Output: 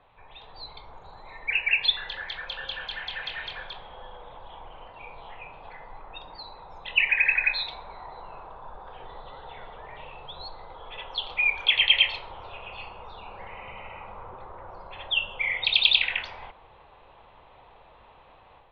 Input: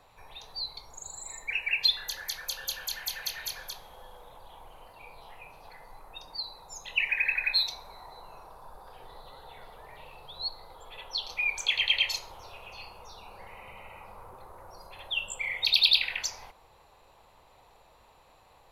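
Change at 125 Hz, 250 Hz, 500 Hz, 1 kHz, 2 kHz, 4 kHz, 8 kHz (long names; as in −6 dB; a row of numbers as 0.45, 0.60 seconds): +5.5 dB, can't be measured, +5.5 dB, +6.0 dB, +5.5 dB, +2.5 dB, below −30 dB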